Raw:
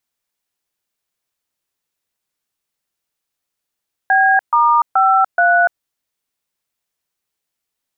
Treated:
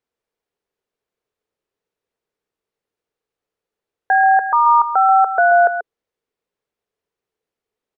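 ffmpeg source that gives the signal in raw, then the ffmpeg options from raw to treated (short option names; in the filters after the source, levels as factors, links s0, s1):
-f lavfi -i "aevalsrc='0.251*clip(min(mod(t,0.427),0.292-mod(t,0.427))/0.002,0,1)*(eq(floor(t/0.427),0)*(sin(2*PI*770*mod(t,0.427))+sin(2*PI*1633*mod(t,0.427)))+eq(floor(t/0.427),1)*(sin(2*PI*941*mod(t,0.427))+sin(2*PI*1209*mod(t,0.427)))+eq(floor(t/0.427),2)*(sin(2*PI*770*mod(t,0.427))+sin(2*PI*1336*mod(t,0.427)))+eq(floor(t/0.427),3)*(sin(2*PI*697*mod(t,0.427))+sin(2*PI*1477*mod(t,0.427))))':d=1.708:s=44100"
-af "lowpass=f=1600:p=1,equalizer=f=440:t=o:w=0.55:g=12.5,aecho=1:1:135:0.335"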